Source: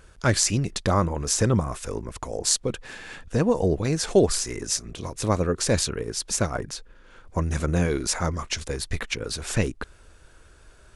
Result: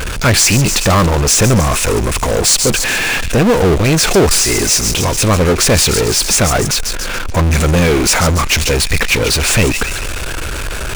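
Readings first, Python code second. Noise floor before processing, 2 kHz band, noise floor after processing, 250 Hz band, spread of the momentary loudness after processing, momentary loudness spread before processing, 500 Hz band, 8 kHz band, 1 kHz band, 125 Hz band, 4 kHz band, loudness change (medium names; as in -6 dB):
-52 dBFS, +17.5 dB, -20 dBFS, +11.5 dB, 8 LU, 12 LU, +11.0 dB, +14.5 dB, +13.5 dB, +12.5 dB, +16.0 dB, +13.0 dB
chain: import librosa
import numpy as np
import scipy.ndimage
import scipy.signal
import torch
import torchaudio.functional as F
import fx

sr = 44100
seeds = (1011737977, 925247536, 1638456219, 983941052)

y = fx.peak_eq(x, sr, hz=2500.0, db=7.5, octaves=0.45)
y = fx.echo_wet_highpass(y, sr, ms=141, feedback_pct=42, hz=3200.0, wet_db=-10.5)
y = fx.power_curve(y, sr, exponent=0.35)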